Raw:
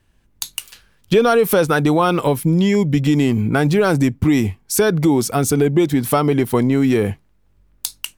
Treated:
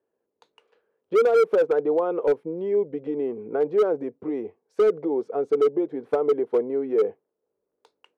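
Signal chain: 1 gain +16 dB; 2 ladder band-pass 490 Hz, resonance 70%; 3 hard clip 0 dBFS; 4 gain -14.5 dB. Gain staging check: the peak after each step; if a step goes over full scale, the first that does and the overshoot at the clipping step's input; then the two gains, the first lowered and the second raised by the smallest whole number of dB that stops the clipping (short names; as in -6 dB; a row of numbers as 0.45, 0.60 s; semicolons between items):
+12.5, +9.5, 0.0, -14.5 dBFS; step 1, 9.5 dB; step 1 +6 dB, step 4 -4.5 dB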